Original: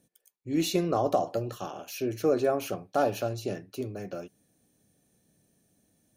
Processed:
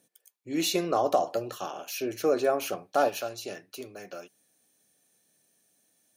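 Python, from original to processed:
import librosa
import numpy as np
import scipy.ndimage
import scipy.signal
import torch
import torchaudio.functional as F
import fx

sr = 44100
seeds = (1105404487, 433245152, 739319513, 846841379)

y = fx.highpass(x, sr, hz=fx.steps((0.0, 550.0), (3.09, 1200.0)), slope=6)
y = y * 10.0 ** (4.0 / 20.0)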